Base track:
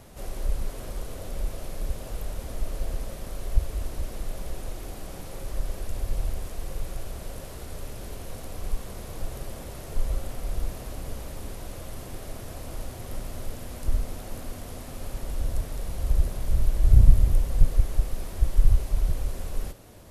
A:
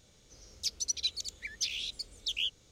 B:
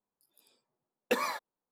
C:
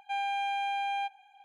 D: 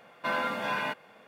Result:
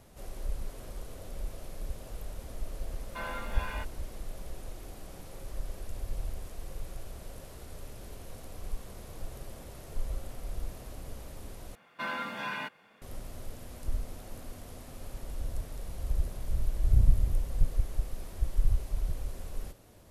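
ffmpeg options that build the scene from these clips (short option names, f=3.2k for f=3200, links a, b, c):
-filter_complex "[4:a]asplit=2[a][b];[0:a]volume=-7.5dB[c];[a]acrusher=bits=8:mix=0:aa=0.5[d];[b]equalizer=f=580:t=o:w=1.2:g=-6.5[e];[c]asplit=2[f][g];[f]atrim=end=11.754[h];[e]atrim=end=1.27,asetpts=PTS-STARTPTS,volume=-3.5dB[i];[g]atrim=start=13.016[j];[d]atrim=end=1.27,asetpts=PTS-STARTPTS,volume=-9dB,afade=t=in:d=0.004:c=hsin,afade=t=out:st=1.266:d=0.004:c=hsin,adelay=2910[k];[h][i]acrossfade=d=0.004:c1=hsin:c2=hsin[l];[l][j]acrossfade=d=0.004:c1=hsin:c2=hsin[m];[m][k]amix=inputs=2:normalize=0"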